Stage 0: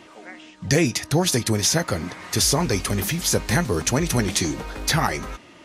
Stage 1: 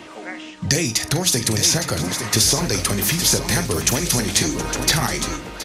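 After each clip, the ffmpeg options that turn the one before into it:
-filter_complex "[0:a]acrossover=split=86|3600[a][b][c];[a]acompressor=threshold=-41dB:ratio=4[d];[b]acompressor=threshold=-29dB:ratio=4[e];[c]acompressor=threshold=-23dB:ratio=4[f];[d][e][f]amix=inputs=3:normalize=0,asplit=2[g][h];[h]aecho=0:1:45|721|861:0.251|0.188|0.398[i];[g][i]amix=inputs=2:normalize=0,volume=7.5dB"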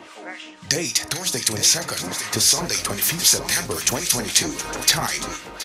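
-filter_complex "[0:a]lowshelf=f=330:g=-11,acrossover=split=1400[a][b];[a]aeval=exprs='val(0)*(1-0.7/2+0.7/2*cos(2*PI*3.8*n/s))':c=same[c];[b]aeval=exprs='val(0)*(1-0.7/2-0.7/2*cos(2*PI*3.8*n/s))':c=same[d];[c][d]amix=inputs=2:normalize=0,volume=2.5dB"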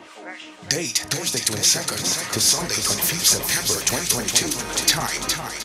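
-af "aecho=1:1:413:0.501,volume=-1dB"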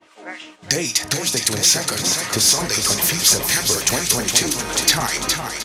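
-filter_complex "[0:a]agate=range=-33dB:threshold=-35dB:ratio=3:detection=peak,asplit=2[a][b];[b]asoftclip=type=tanh:threshold=-12dB,volume=-3.5dB[c];[a][c]amix=inputs=2:normalize=0,volume=-1dB"

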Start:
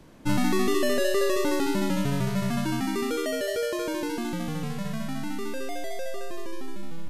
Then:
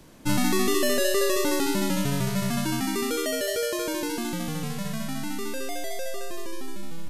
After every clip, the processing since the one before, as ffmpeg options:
-af "highshelf=f=4k:g=9"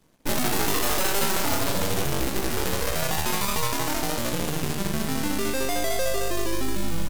-filter_complex "[0:a]asplit=6[a][b][c][d][e][f];[b]adelay=177,afreqshift=-51,volume=-19.5dB[g];[c]adelay=354,afreqshift=-102,volume=-24.2dB[h];[d]adelay=531,afreqshift=-153,volume=-29dB[i];[e]adelay=708,afreqshift=-204,volume=-33.7dB[j];[f]adelay=885,afreqshift=-255,volume=-38.4dB[k];[a][g][h][i][j][k]amix=inputs=6:normalize=0,acrusher=bits=6:mode=log:mix=0:aa=0.000001,aeval=exprs='0.266*(cos(1*acos(clip(val(0)/0.266,-1,1)))-cos(1*PI/2))+0.133*(cos(6*acos(clip(val(0)/0.266,-1,1)))-cos(6*PI/2))+0.0299*(cos(7*acos(clip(val(0)/0.266,-1,1)))-cos(7*PI/2))':c=same,volume=-1.5dB"

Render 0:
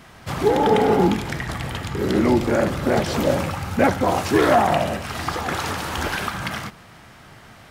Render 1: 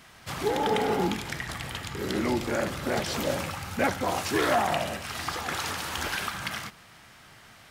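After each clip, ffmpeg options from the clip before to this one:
-af "tiltshelf=f=1.3k:g=-4.5,volume=-6dB"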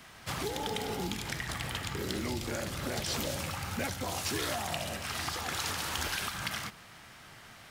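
-filter_complex "[0:a]acrossover=split=130|3000[a][b][c];[b]acompressor=threshold=-35dB:ratio=6[d];[a][d][c]amix=inputs=3:normalize=0,acrusher=bits=7:mode=log:mix=0:aa=0.000001"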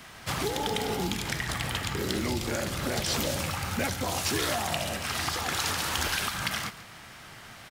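-af "aecho=1:1:139:0.141,volume=5dB"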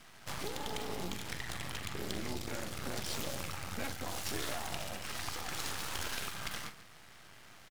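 -filter_complex "[0:a]aeval=exprs='max(val(0),0)':c=same,asplit=2[a][b];[b]adelay=44,volume=-12dB[c];[a][c]amix=inputs=2:normalize=0,volume=-6dB"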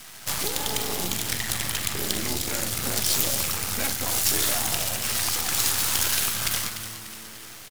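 -filter_complex "[0:a]crystalizer=i=3:c=0,asplit=6[a][b][c][d][e][f];[b]adelay=295,afreqshift=-110,volume=-11dB[g];[c]adelay=590,afreqshift=-220,volume=-17dB[h];[d]adelay=885,afreqshift=-330,volume=-23dB[i];[e]adelay=1180,afreqshift=-440,volume=-29.1dB[j];[f]adelay=1475,afreqshift=-550,volume=-35.1dB[k];[a][g][h][i][j][k]amix=inputs=6:normalize=0,volume=7.5dB"

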